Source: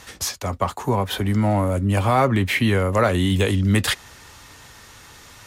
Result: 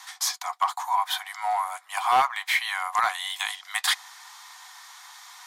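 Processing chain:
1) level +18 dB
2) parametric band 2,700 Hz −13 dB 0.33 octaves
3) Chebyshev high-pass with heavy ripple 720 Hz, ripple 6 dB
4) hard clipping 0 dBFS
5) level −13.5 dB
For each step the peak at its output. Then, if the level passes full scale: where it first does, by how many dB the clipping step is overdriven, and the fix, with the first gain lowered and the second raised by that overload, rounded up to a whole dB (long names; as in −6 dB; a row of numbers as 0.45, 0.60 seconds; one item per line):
+10.5, +10.5, +6.5, 0.0, −13.5 dBFS
step 1, 6.5 dB
step 1 +11 dB, step 5 −6.5 dB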